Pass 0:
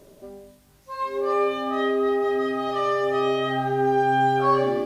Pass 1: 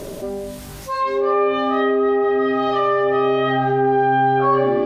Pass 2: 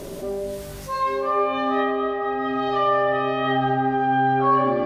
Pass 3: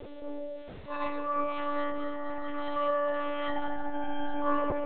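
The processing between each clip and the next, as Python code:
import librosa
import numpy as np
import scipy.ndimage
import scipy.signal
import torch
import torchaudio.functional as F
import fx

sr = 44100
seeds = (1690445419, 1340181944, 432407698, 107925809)

y1 = fx.env_lowpass_down(x, sr, base_hz=2500.0, full_db=-19.5)
y1 = fx.env_flatten(y1, sr, amount_pct=50)
y1 = F.gain(torch.from_numpy(y1), 2.5).numpy()
y2 = fx.rev_plate(y1, sr, seeds[0], rt60_s=2.0, hf_ratio=0.85, predelay_ms=0, drr_db=5.0)
y2 = F.gain(torch.from_numpy(y2), -3.5).numpy()
y3 = fx.lpc_monotone(y2, sr, seeds[1], pitch_hz=290.0, order=10)
y3 = F.gain(torch.from_numpy(y3), -8.5).numpy()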